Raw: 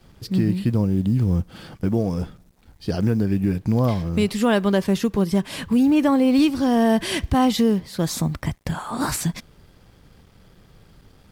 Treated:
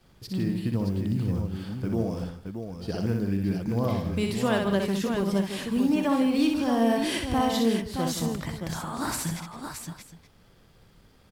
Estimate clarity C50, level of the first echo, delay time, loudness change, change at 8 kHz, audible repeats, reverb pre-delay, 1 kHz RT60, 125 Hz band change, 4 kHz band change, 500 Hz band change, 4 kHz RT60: none, -4.5 dB, 61 ms, -6.0 dB, -4.0 dB, 5, none, none, -6.5 dB, -3.5 dB, -5.0 dB, none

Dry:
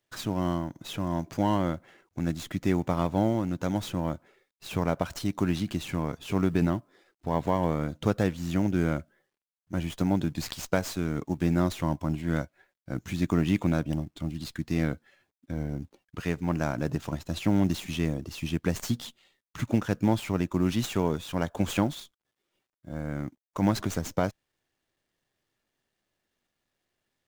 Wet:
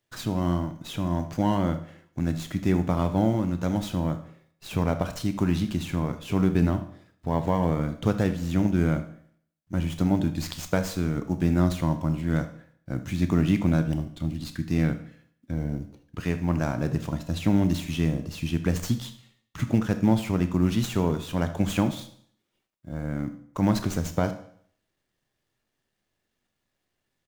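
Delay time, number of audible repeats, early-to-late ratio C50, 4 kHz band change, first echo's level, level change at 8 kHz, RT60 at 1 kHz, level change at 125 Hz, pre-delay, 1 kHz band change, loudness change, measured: 79 ms, 1, 12.0 dB, +0.5 dB, -18.0 dB, +0.5 dB, 0.60 s, +4.0 dB, 24 ms, +0.5 dB, +3.0 dB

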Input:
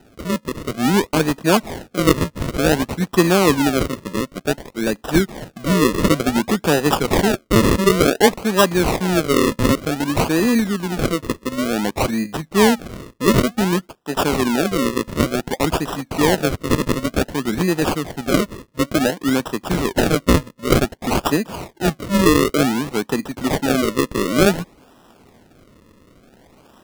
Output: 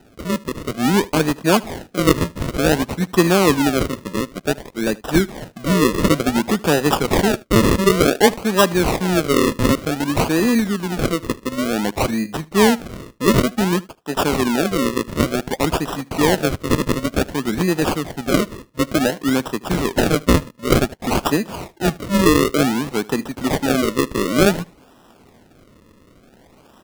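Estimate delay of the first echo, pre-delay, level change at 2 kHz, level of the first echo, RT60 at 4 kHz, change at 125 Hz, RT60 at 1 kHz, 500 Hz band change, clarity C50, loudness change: 77 ms, none, 0.0 dB, -22.5 dB, none, 0.0 dB, none, 0.0 dB, none, 0.0 dB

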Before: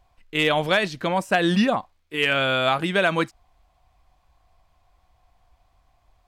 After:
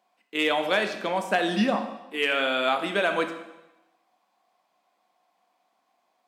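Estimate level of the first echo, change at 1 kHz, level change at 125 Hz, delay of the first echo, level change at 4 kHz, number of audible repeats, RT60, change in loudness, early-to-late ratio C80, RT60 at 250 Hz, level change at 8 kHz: none, -2.5 dB, -11.0 dB, none, -3.5 dB, none, 0.95 s, -3.5 dB, 11.0 dB, 1.0 s, -3.5 dB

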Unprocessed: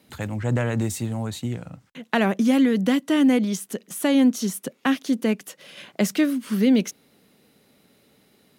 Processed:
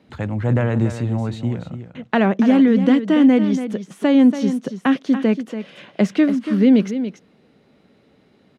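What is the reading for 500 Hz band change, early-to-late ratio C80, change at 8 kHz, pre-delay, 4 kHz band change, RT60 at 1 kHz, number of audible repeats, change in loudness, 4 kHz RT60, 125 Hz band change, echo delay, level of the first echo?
+4.5 dB, none, under -10 dB, none, -2.0 dB, none, 1, +5.0 dB, none, +6.0 dB, 0.284 s, -10.5 dB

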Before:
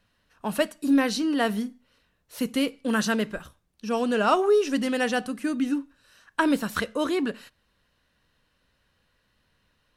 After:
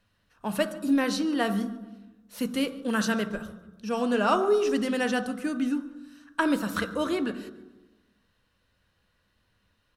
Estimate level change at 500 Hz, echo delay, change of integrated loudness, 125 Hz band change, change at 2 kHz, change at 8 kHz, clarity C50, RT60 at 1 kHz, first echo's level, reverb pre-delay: -2.0 dB, 0.144 s, -2.0 dB, +0.5 dB, -2.0 dB, -2.5 dB, 12.0 dB, 0.95 s, -21.5 dB, 3 ms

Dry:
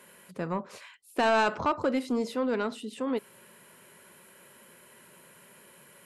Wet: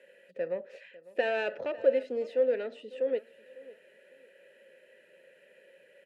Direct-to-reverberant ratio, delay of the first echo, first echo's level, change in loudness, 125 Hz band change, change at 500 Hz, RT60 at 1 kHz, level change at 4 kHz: none, 0.55 s, -19.5 dB, -2.0 dB, under -15 dB, +2.5 dB, none, -8.0 dB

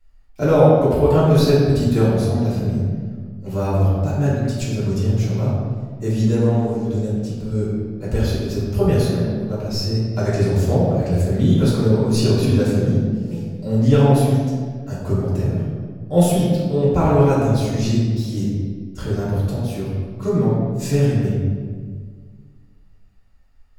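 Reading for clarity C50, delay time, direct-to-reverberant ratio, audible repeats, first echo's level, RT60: -1.0 dB, none, -9.0 dB, none, none, 1.7 s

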